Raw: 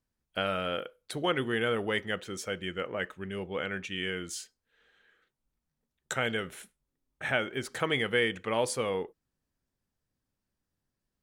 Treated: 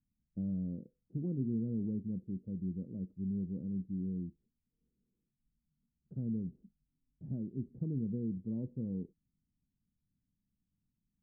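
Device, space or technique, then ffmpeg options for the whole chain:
the neighbour's flat through the wall: -af "lowpass=f=260:w=0.5412,lowpass=f=260:w=1.3066,equalizer=f=190:t=o:w=0.86:g=6"

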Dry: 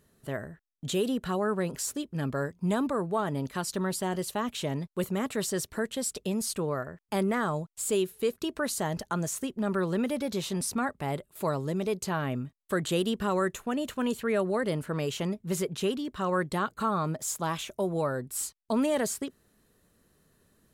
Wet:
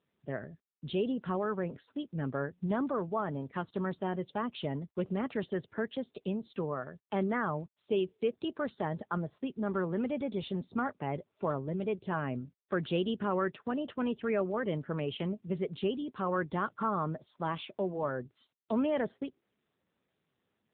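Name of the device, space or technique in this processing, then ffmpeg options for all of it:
mobile call with aggressive noise cancelling: -af "highpass=100,afftdn=nr=18:nf=-47,volume=0.75" -ar 8000 -c:a libopencore_amrnb -b:a 7950

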